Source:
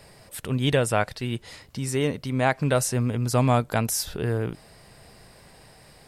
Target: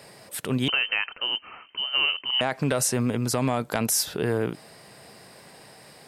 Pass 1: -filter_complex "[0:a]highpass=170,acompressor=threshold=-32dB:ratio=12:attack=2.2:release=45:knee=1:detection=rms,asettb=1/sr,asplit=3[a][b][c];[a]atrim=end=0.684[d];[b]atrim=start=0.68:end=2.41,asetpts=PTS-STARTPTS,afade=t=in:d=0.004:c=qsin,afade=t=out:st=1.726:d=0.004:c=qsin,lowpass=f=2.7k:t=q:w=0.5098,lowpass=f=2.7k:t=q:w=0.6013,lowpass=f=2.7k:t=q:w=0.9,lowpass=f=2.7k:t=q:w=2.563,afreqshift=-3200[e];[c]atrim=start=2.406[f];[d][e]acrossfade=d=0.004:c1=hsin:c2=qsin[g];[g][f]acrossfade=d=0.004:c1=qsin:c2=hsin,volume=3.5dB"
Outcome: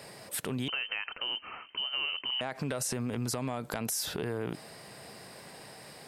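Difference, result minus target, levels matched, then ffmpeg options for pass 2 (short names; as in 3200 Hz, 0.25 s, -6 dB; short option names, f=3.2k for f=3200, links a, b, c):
compressor: peak gain reduction +10 dB
-filter_complex "[0:a]highpass=170,acompressor=threshold=-21dB:ratio=12:attack=2.2:release=45:knee=1:detection=rms,asettb=1/sr,asplit=3[a][b][c];[a]atrim=end=0.684[d];[b]atrim=start=0.68:end=2.41,asetpts=PTS-STARTPTS,afade=t=in:d=0.004:c=qsin,afade=t=out:st=1.726:d=0.004:c=qsin,lowpass=f=2.7k:t=q:w=0.5098,lowpass=f=2.7k:t=q:w=0.6013,lowpass=f=2.7k:t=q:w=0.9,lowpass=f=2.7k:t=q:w=2.563,afreqshift=-3200[e];[c]atrim=start=2.406[f];[d][e]acrossfade=d=0.004:c1=hsin:c2=qsin[g];[g][f]acrossfade=d=0.004:c1=qsin:c2=hsin,volume=3.5dB"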